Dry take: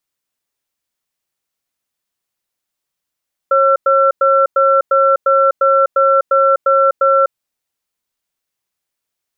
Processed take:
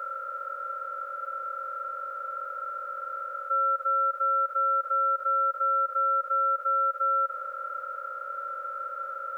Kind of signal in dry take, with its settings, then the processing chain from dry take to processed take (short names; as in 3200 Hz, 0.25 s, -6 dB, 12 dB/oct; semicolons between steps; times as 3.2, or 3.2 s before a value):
cadence 544 Hz, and 1350 Hz, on 0.25 s, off 0.10 s, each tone -11 dBFS 3.82 s
per-bin compression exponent 0.2; HPF 1300 Hz 12 dB/oct; limiter -20 dBFS